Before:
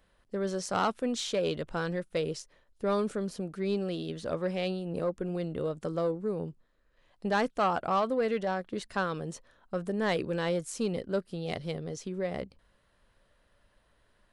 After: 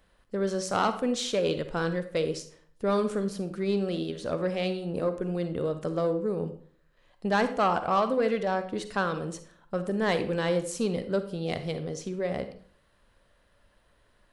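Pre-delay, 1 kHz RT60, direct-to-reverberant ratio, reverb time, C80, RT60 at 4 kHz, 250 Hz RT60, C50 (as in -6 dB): 40 ms, 0.50 s, 9.5 dB, 0.50 s, 15.0 dB, 0.40 s, 0.60 s, 11.0 dB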